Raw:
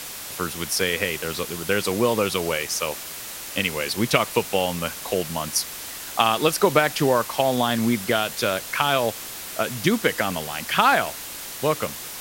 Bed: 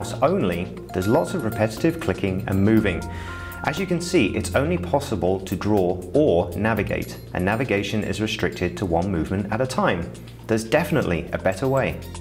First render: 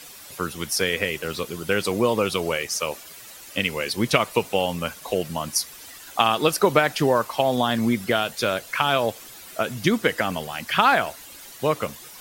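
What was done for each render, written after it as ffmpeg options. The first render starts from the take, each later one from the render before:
-af "afftdn=nr=11:nf=-36"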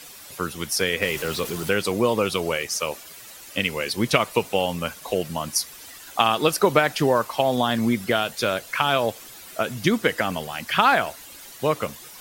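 -filter_complex "[0:a]asettb=1/sr,asplit=3[s0][s1][s2];[s0]atrim=end=1.024[s3];[s1]atrim=start=1.02:end=1.71,asetpts=PTS-STARTPTS,afade=t=in:d=0.004:c=qsin,afade=t=out:st=0.686:d=0.004:c=qsin,aeval=exprs='val(0)+0.5*0.0282*sgn(val(0))':c=same[s4];[s2]atrim=start=1.706[s5];[s3][s4]acrossfade=d=0.004:c1=hsin:c2=qsin[s6];[s6][s5]acrossfade=d=0.004:c1=qsin:c2=hsin"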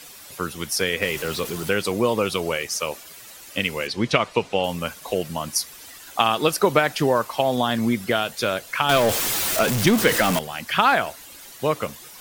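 -filter_complex "[0:a]asettb=1/sr,asplit=3[s0][s1][s2];[s0]atrim=end=3.874[s3];[s1]atrim=start=3.87:end=4.64,asetpts=PTS-STARTPTS,afade=t=in:d=0.004:c=qsin,afade=t=out:st=0.766:d=0.004:c=qsin,lowpass=5500[s4];[s2]atrim=start=4.636[s5];[s3][s4]acrossfade=d=0.004:c1=hsin:c2=qsin[s6];[s6][s5]acrossfade=d=0.004:c1=qsin:c2=hsin,asettb=1/sr,asplit=3[s7][s8][s9];[s7]atrim=end=8.894[s10];[s8]atrim=start=8.89:end=10.39,asetpts=PTS-STARTPTS,afade=t=in:d=0.004:c=qsin,afade=t=out:st=1.496:d=0.004:c=qsin,aeval=exprs='val(0)+0.5*0.119*sgn(val(0))':c=same[s11];[s9]atrim=start=10.386[s12];[s10][s11]acrossfade=d=0.004:c1=hsin:c2=qsin[s13];[s13][s12]acrossfade=d=0.004:c1=qsin:c2=hsin"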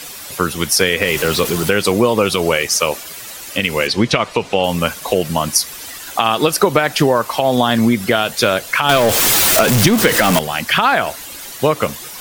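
-af "acompressor=threshold=0.1:ratio=6,alimiter=level_in=3.55:limit=0.891:release=50:level=0:latency=1"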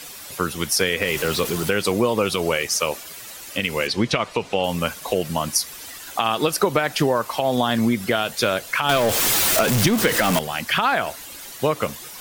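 -af "volume=0.501"

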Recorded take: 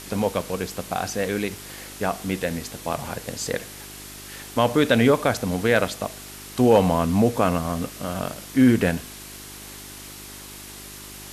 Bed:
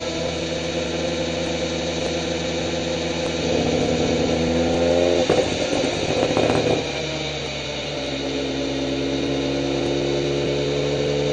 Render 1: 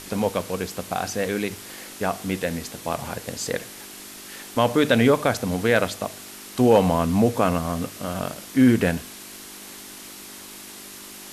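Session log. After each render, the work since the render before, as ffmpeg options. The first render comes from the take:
-af "bandreject=f=50:t=h:w=4,bandreject=f=100:t=h:w=4,bandreject=f=150:t=h:w=4"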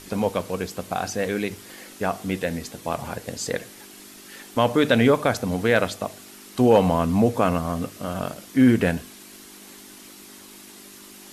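-af "afftdn=nr=6:nf=-41"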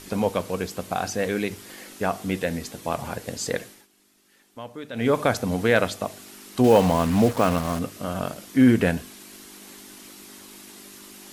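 -filter_complex "[0:a]asettb=1/sr,asplit=3[s0][s1][s2];[s0]atrim=end=6.644[s3];[s1]atrim=start=6.64:end=7.79,asetpts=PTS-STARTPTS,afade=t=in:d=0.004:c=qsin,afade=t=out:st=1.146:d=0.004:c=qsin,acrusher=bits=4:mix=0:aa=0.5[s4];[s2]atrim=start=7.786[s5];[s3][s4]acrossfade=d=0.004:c1=hsin:c2=qsin[s6];[s6][s5]acrossfade=d=0.004:c1=qsin:c2=hsin,asplit=3[s7][s8][s9];[s7]atrim=end=3.87,asetpts=PTS-STARTPTS,afade=t=out:st=3.6:d=0.27:silence=0.125893[s10];[s8]atrim=start=3.87:end=4.93,asetpts=PTS-STARTPTS,volume=0.126[s11];[s9]atrim=start=4.93,asetpts=PTS-STARTPTS,afade=t=in:d=0.27:silence=0.125893[s12];[s10][s11][s12]concat=n=3:v=0:a=1"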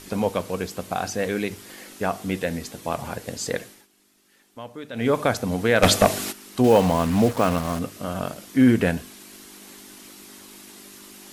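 -filter_complex "[0:a]asplit=3[s0][s1][s2];[s0]afade=t=out:st=5.82:d=0.02[s3];[s1]aeval=exprs='0.501*sin(PI/2*3.55*val(0)/0.501)':c=same,afade=t=in:st=5.82:d=0.02,afade=t=out:st=6.31:d=0.02[s4];[s2]afade=t=in:st=6.31:d=0.02[s5];[s3][s4][s5]amix=inputs=3:normalize=0"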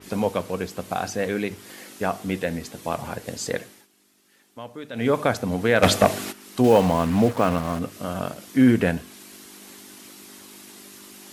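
-af "highpass=65,adynamicequalizer=threshold=0.00891:dfrequency=3400:dqfactor=0.7:tfrequency=3400:tqfactor=0.7:attack=5:release=100:ratio=0.375:range=3:mode=cutabove:tftype=highshelf"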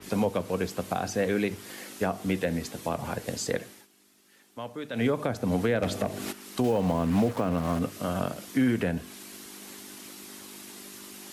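-filter_complex "[0:a]acrossover=split=170|560[s0][s1][s2];[s0]acompressor=threshold=0.0355:ratio=4[s3];[s1]acompressor=threshold=0.0794:ratio=4[s4];[s2]acompressor=threshold=0.0316:ratio=4[s5];[s3][s4][s5]amix=inputs=3:normalize=0,alimiter=limit=0.168:level=0:latency=1:release=282"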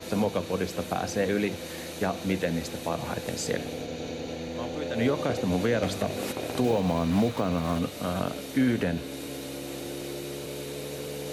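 -filter_complex "[1:a]volume=0.178[s0];[0:a][s0]amix=inputs=2:normalize=0"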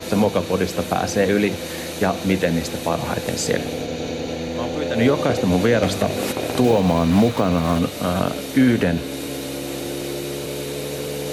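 -af "volume=2.66"

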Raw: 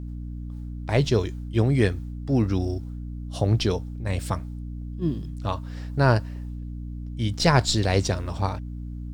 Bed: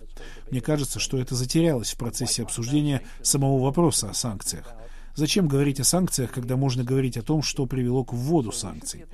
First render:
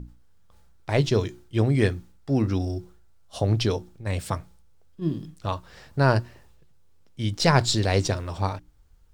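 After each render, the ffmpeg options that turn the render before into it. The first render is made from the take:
-af "bandreject=f=60:t=h:w=6,bandreject=f=120:t=h:w=6,bandreject=f=180:t=h:w=6,bandreject=f=240:t=h:w=6,bandreject=f=300:t=h:w=6,bandreject=f=360:t=h:w=6"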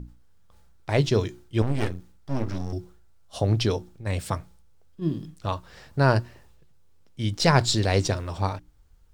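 -filter_complex "[0:a]asettb=1/sr,asplit=3[s0][s1][s2];[s0]atrim=end=1.624[s3];[s1]atrim=start=1.62:end=2.73,asetpts=PTS-STARTPTS,afade=t=in:d=0.004:c=qsin,afade=t=out:st=1.106:d=0.004:c=qsin,aeval=exprs='max(val(0),0)':c=same[s4];[s2]atrim=start=2.726[s5];[s3][s4]acrossfade=d=0.004:c1=hsin:c2=qsin[s6];[s6][s5]acrossfade=d=0.004:c1=qsin:c2=hsin"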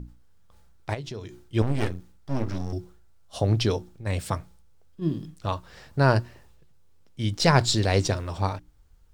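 -filter_complex "[0:a]asplit=3[s0][s1][s2];[s0]afade=t=out:st=0.93:d=0.02[s3];[s1]acompressor=threshold=0.0178:ratio=4:attack=3.2:release=140:knee=1:detection=peak,afade=t=in:st=0.93:d=0.02,afade=t=out:st=1.44:d=0.02[s4];[s2]afade=t=in:st=1.44:d=0.02[s5];[s3][s4][s5]amix=inputs=3:normalize=0"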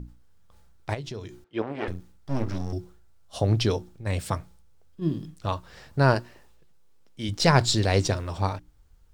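-filter_complex "[0:a]asettb=1/sr,asplit=3[s0][s1][s2];[s0]atrim=end=1.444[s3];[s1]atrim=start=1.44:end=1.88,asetpts=PTS-STARTPTS,afade=t=in:d=0.004:c=qsin,afade=t=out:st=0.436:d=0.004:c=qsin,highpass=330,lowpass=2500[s4];[s2]atrim=start=1.876[s5];[s3][s4]acrossfade=d=0.004:c1=hsin:c2=qsin[s6];[s6][s5]acrossfade=d=0.004:c1=qsin:c2=hsin,asettb=1/sr,asplit=3[s7][s8][s9];[s7]atrim=end=6.144[s10];[s8]atrim=start=6.14:end=7.29,asetpts=PTS-STARTPTS,afade=t=in:d=0.004:c=qsin,afade=t=out:st=1.146:d=0.004:c=qsin,equalizer=f=91:w=1.3:g=-13[s11];[s9]atrim=start=7.286[s12];[s10][s11]acrossfade=d=0.004:c1=hsin:c2=qsin[s13];[s13][s12]acrossfade=d=0.004:c1=qsin:c2=hsin"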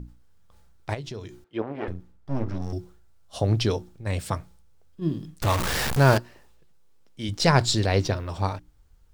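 -filter_complex "[0:a]asettb=1/sr,asplit=3[s0][s1][s2];[s0]atrim=end=1.574[s3];[s1]atrim=start=1.57:end=2.62,asetpts=PTS-STARTPTS,afade=t=in:d=0.004:c=qsin,afade=t=out:st=1.046:d=0.004:c=qsin,highshelf=f=2600:g=-11[s4];[s2]atrim=start=2.616[s5];[s3][s4]acrossfade=d=0.004:c1=hsin:c2=qsin[s6];[s6][s5]acrossfade=d=0.004:c1=qsin:c2=hsin,asettb=1/sr,asplit=3[s7][s8][s9];[s7]atrim=end=5.424[s10];[s8]atrim=start=5.42:end=6.18,asetpts=PTS-STARTPTS,afade=t=in:d=0.004:c=qsin,afade=t=out:st=0.756:d=0.004:c=qsin,aeval=exprs='val(0)+0.5*0.0944*sgn(val(0))':c=same[s11];[s9]atrim=start=6.176[s12];[s10][s11]acrossfade=d=0.004:c1=hsin:c2=qsin[s13];[s13][s12]acrossfade=d=0.004:c1=qsin:c2=hsin,asettb=1/sr,asplit=3[s14][s15][s16];[s14]atrim=end=7.864[s17];[s15]atrim=start=7.86:end=8.29,asetpts=PTS-STARTPTS,afade=t=in:d=0.004:c=qsin,afade=t=out:st=0.426:d=0.004:c=qsin,equalizer=f=8000:w=1.7:g=-12[s18];[s16]atrim=start=8.286[s19];[s17][s18]acrossfade=d=0.004:c1=hsin:c2=qsin[s20];[s20][s19]acrossfade=d=0.004:c1=qsin:c2=hsin"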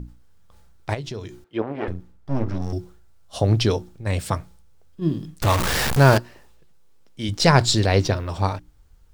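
-af "volume=1.58,alimiter=limit=0.708:level=0:latency=1"

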